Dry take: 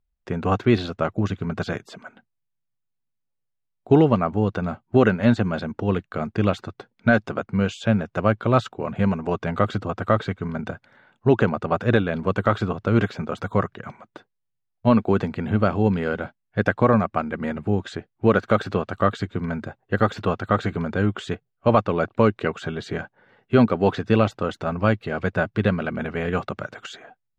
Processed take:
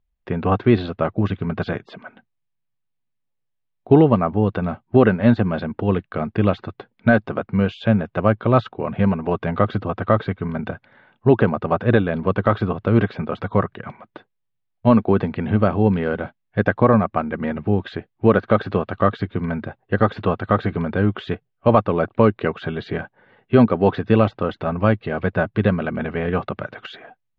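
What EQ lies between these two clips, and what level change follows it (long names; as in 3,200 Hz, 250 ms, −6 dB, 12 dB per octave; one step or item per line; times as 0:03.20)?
low-pass filter 3,800 Hz 24 dB per octave
notch filter 1,400 Hz, Q 15
dynamic equaliser 2,700 Hz, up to −4 dB, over −37 dBFS, Q 1.1
+3.0 dB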